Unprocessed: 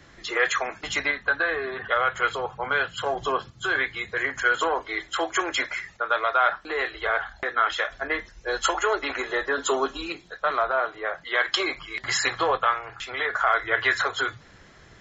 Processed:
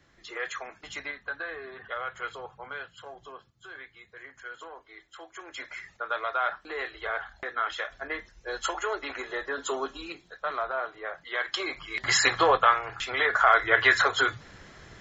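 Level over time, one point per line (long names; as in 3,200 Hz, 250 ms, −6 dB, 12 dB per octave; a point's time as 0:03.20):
0:02.49 −11.5 dB
0:03.32 −20 dB
0:05.36 −20 dB
0:05.84 −7 dB
0:11.59 −7 dB
0:12.09 +2 dB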